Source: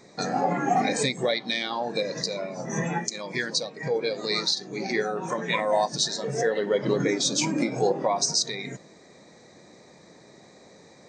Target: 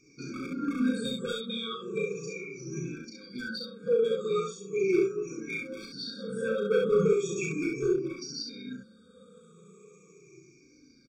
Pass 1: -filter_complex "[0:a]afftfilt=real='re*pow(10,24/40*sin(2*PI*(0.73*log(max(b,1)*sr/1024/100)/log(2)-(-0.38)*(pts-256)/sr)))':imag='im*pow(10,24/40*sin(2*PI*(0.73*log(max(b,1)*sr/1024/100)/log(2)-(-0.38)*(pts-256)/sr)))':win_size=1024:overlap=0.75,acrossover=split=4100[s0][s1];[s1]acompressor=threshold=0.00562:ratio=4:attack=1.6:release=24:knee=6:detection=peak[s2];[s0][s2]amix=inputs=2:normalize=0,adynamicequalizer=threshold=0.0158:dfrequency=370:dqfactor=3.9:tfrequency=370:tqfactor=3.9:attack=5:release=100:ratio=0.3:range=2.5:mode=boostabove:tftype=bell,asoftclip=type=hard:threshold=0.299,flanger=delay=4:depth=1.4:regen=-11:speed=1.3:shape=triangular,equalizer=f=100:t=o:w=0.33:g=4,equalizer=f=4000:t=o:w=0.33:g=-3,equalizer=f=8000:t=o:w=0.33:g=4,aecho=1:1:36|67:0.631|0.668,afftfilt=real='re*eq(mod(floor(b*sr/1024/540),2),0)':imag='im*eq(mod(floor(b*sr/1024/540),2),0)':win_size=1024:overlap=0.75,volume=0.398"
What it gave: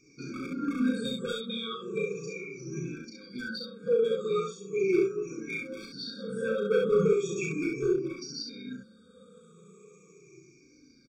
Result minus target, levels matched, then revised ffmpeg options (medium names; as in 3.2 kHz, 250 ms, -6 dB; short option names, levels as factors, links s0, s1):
compression: peak gain reduction +5 dB
-filter_complex "[0:a]afftfilt=real='re*pow(10,24/40*sin(2*PI*(0.73*log(max(b,1)*sr/1024/100)/log(2)-(-0.38)*(pts-256)/sr)))':imag='im*pow(10,24/40*sin(2*PI*(0.73*log(max(b,1)*sr/1024/100)/log(2)-(-0.38)*(pts-256)/sr)))':win_size=1024:overlap=0.75,acrossover=split=4100[s0][s1];[s1]acompressor=threshold=0.0119:ratio=4:attack=1.6:release=24:knee=6:detection=peak[s2];[s0][s2]amix=inputs=2:normalize=0,adynamicequalizer=threshold=0.0158:dfrequency=370:dqfactor=3.9:tfrequency=370:tqfactor=3.9:attack=5:release=100:ratio=0.3:range=2.5:mode=boostabove:tftype=bell,asoftclip=type=hard:threshold=0.299,flanger=delay=4:depth=1.4:regen=-11:speed=1.3:shape=triangular,equalizer=f=100:t=o:w=0.33:g=4,equalizer=f=4000:t=o:w=0.33:g=-3,equalizer=f=8000:t=o:w=0.33:g=4,aecho=1:1:36|67:0.631|0.668,afftfilt=real='re*eq(mod(floor(b*sr/1024/540),2),0)':imag='im*eq(mod(floor(b*sr/1024/540),2),0)':win_size=1024:overlap=0.75,volume=0.398"